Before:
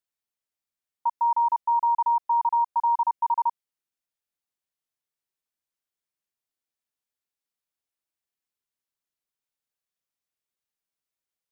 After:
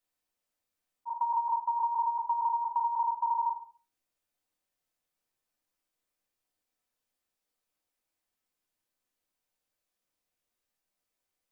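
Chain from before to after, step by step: bell 630 Hz +2.5 dB 1.7 oct; shoebox room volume 160 m³, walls furnished, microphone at 2 m; auto swell 0.272 s; compressor 5:1, threshold -28 dBFS, peak gain reduction 12 dB

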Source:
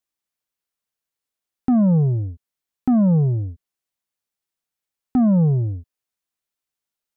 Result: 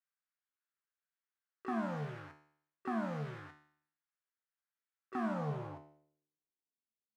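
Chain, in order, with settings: harmoniser +7 st -14 dB; in parallel at -9 dB: bit-crush 5-bit; on the sum: resonator 75 Hz, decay 0.61 s, harmonics all, mix 80%; band-pass sweep 1500 Hz -> 210 Hz, 5.25–6.95; gain +7.5 dB

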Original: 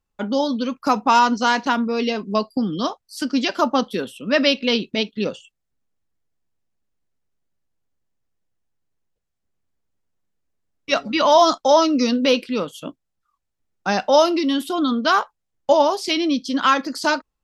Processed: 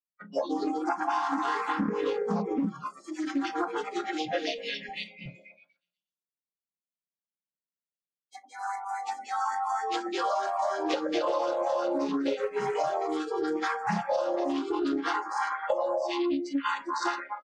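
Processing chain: chord vocoder major triad, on C#3; tone controls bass -1 dB, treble +5 dB; reverb RT60 0.50 s, pre-delay 7 ms, DRR 15 dB; 2.66–5.26 flange 1.5 Hz, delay 3.2 ms, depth 2.6 ms, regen -45%; delay with a stepping band-pass 0.121 s, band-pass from 470 Hz, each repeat 0.7 oct, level -2 dB; echoes that change speed 0.206 s, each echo +2 st, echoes 3, each echo -6 dB; spectral noise reduction 28 dB; comb 3.7 ms, depth 39%; compressor 12:1, threshold -25 dBFS, peak gain reduction 17 dB; Doppler distortion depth 0.17 ms

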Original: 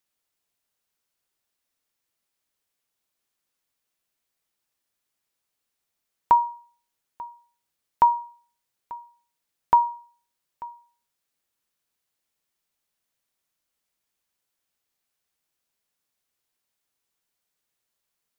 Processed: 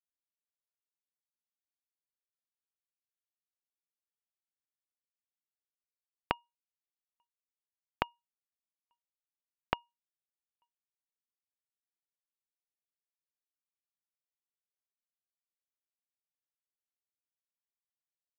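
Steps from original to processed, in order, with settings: compressor 6:1, threshold -22 dBFS, peak gain reduction 9.5 dB; power-law curve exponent 3; gain +1 dB

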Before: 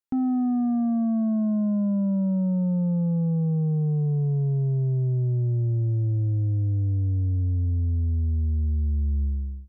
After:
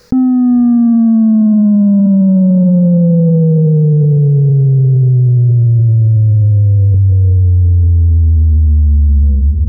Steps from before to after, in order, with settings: 6.94–9.23 Chebyshev band-stop 470–980 Hz, order 5; reverb removal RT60 1.3 s; EQ curve 110 Hz 0 dB, 220 Hz -3 dB, 310 Hz -17 dB, 490 Hz +5 dB, 700 Hz -17 dB, 1200 Hz -11 dB, 1700 Hz -9 dB, 3200 Hz -19 dB, 4800 Hz +4 dB; AGC gain up to 6 dB; air absorption 280 m; diffused feedback echo 0.493 s, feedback 47%, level -13.5 dB; maximiser +27 dB; fast leveller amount 50%; gain -4 dB

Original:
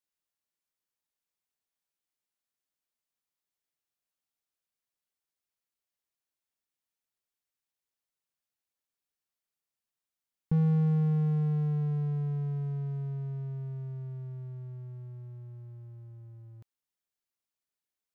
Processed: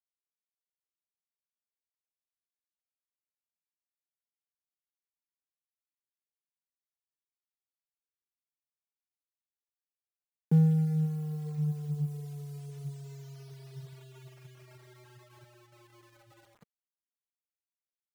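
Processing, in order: Wiener smoothing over 25 samples; low shelf 240 Hz +4 dB; notch 1100 Hz, Q 8.9; in parallel at -2 dB: compressor 12:1, threshold -33 dBFS, peak gain reduction 13.5 dB; on the sum: elliptic high-pass 150 Hz, stop band 50 dB; thin delay 0.962 s, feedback 56%, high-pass 1700 Hz, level -11 dB; on a send at -20 dB: reverb RT60 5.1 s, pre-delay 73 ms; on the sum: bit-crush 9-bit; reverb removal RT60 2 s

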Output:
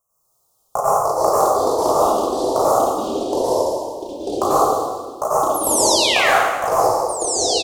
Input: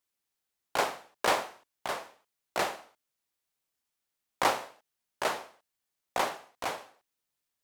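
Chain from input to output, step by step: elliptic band-stop 1100–6400 Hz, stop band 40 dB; bell 1000 Hz +8 dB 0.93 oct; comb 1.6 ms, depth 95%; compressor, threshold -27 dBFS, peak gain reduction 11 dB; painted sound fall, 5.54–6.29, 1200–12000 Hz -35 dBFS; outdoor echo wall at 54 m, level -18 dB; plate-style reverb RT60 1.1 s, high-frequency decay 0.95×, pre-delay 80 ms, DRR -8.5 dB; echoes that change speed 0.104 s, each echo -4 st, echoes 3; gain +8 dB

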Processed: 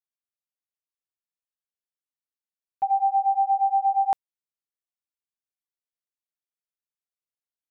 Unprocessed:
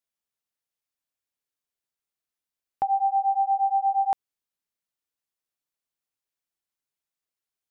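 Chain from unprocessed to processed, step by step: gate -26 dBFS, range -14 dB; gain +1.5 dB

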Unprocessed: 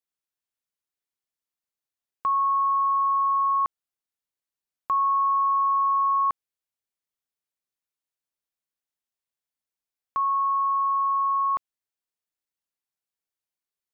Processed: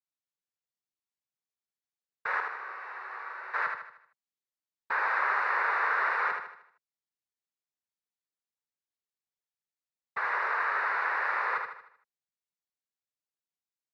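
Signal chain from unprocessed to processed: noise vocoder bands 6; 2.4–3.54 resonator 380 Hz, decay 0.72 s, mix 80%; feedback echo 77 ms, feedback 45%, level -5 dB; gain -7.5 dB

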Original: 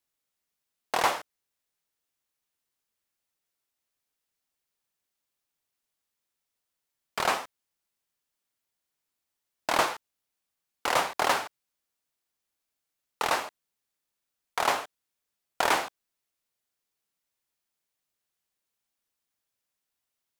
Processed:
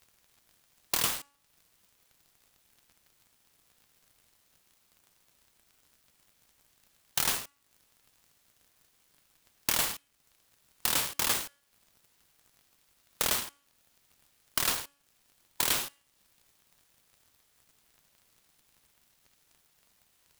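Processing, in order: formant shift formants +5 st; band shelf 4800 Hz +14 dB; crackle 110/s -55 dBFS; in parallel at -8 dB: bit-crush 4-bit; on the sum: compressor 2.5:1, threshold -39 dBFS, peak gain reduction 18.5 dB; tone controls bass +12 dB, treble +10 dB; de-hum 282.9 Hz, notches 11; noise-modulated delay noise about 5900 Hz, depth 0.067 ms

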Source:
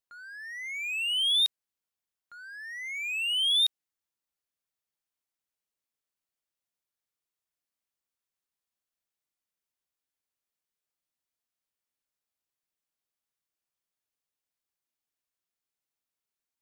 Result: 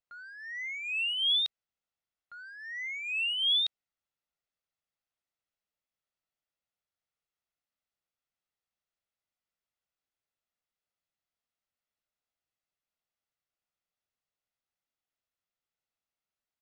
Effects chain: air absorption 120 m; comb 1.5 ms, depth 31%

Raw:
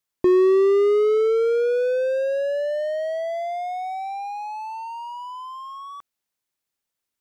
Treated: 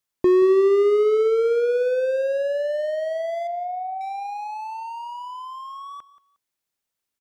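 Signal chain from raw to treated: 3.47–4.01 polynomial smoothing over 65 samples; feedback echo 0.179 s, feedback 24%, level -16.5 dB

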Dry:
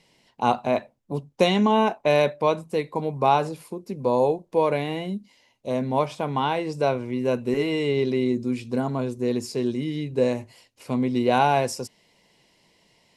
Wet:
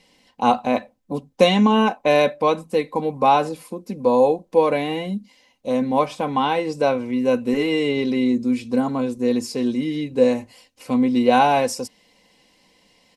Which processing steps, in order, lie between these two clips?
comb 3.9 ms, depth 57%; gain +2.5 dB

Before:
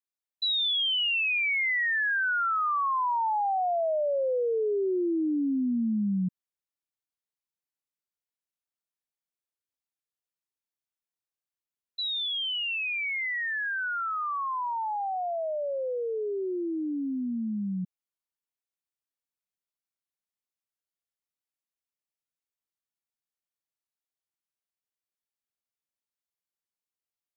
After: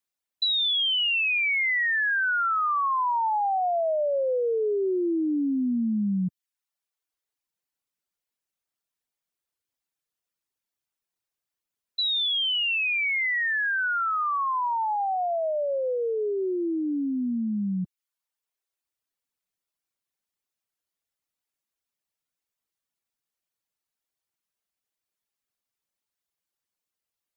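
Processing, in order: reverb removal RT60 0.77 s; compressor, threshold -30 dBFS, peak gain reduction 4.5 dB; gain +7 dB

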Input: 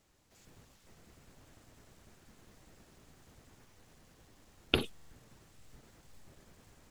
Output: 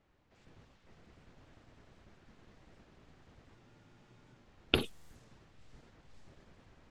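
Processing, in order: low-pass opened by the level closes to 2400 Hz, open at -43 dBFS; spectral freeze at 3.57, 0.88 s; record warp 78 rpm, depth 100 cents

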